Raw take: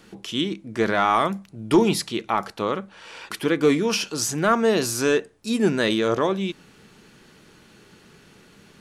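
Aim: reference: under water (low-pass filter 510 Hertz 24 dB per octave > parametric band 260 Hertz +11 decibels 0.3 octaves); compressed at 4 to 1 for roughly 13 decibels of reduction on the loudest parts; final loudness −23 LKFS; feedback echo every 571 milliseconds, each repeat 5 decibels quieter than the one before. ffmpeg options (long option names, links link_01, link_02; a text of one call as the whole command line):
ffmpeg -i in.wav -af "acompressor=threshold=-29dB:ratio=4,lowpass=frequency=510:width=0.5412,lowpass=frequency=510:width=1.3066,equalizer=frequency=260:width_type=o:width=0.3:gain=11,aecho=1:1:571|1142|1713|2284|2855|3426|3997:0.562|0.315|0.176|0.0988|0.0553|0.031|0.0173,volume=7.5dB" out.wav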